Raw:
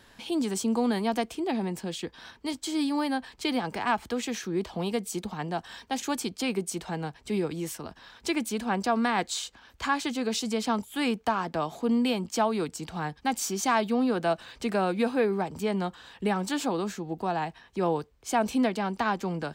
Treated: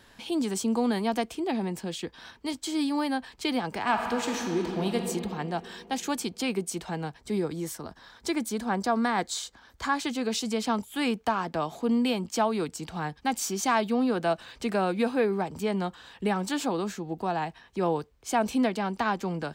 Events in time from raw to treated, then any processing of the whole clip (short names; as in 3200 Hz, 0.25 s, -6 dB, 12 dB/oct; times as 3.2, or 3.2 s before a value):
3.79–4.96 reverb throw, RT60 2.8 s, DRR 2.5 dB
7.18–9.99 bell 2700 Hz -8.5 dB 0.4 oct